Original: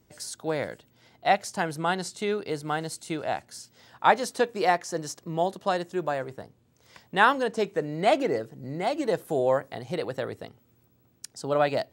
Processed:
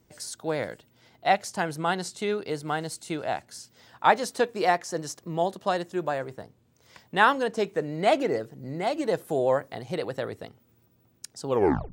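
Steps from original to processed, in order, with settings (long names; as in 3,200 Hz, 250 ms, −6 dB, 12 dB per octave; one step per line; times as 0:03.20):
turntable brake at the end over 0.45 s
pitch vibrato 11 Hz 27 cents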